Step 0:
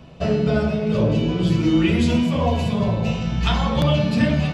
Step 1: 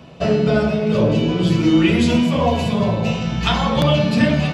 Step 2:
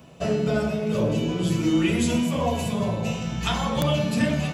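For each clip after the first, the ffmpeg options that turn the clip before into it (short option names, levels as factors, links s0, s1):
-af "highpass=f=150:p=1,volume=1.68"
-af "aexciter=amount=3:drive=7.6:freq=6400,volume=0.447"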